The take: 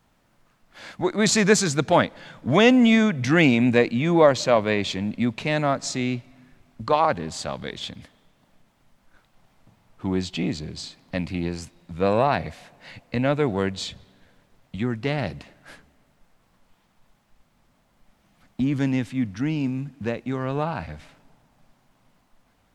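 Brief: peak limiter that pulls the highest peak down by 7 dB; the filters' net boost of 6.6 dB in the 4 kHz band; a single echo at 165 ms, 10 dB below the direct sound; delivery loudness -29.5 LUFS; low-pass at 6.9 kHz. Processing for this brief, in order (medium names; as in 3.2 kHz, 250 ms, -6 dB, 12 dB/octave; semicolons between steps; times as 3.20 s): low-pass 6.9 kHz; peaking EQ 4 kHz +8.5 dB; peak limiter -9 dBFS; delay 165 ms -10 dB; trim -6.5 dB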